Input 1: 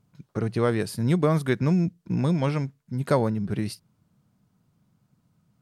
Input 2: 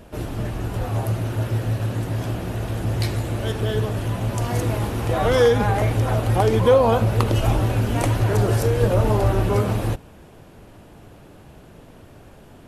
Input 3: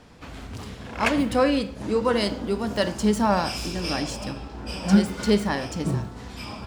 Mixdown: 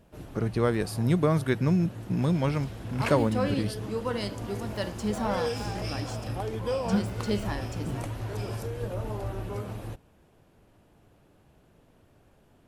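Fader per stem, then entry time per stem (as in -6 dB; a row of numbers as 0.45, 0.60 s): -2.0, -15.0, -9.0 dB; 0.00, 0.00, 2.00 s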